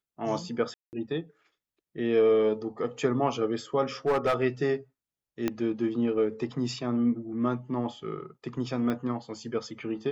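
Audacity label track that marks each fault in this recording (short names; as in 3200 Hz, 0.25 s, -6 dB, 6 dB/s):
0.740000	0.930000	gap 0.189 s
4.060000	4.430000	clipped -20.5 dBFS
5.480000	5.480000	pop -14 dBFS
8.900000	8.900000	pop -19 dBFS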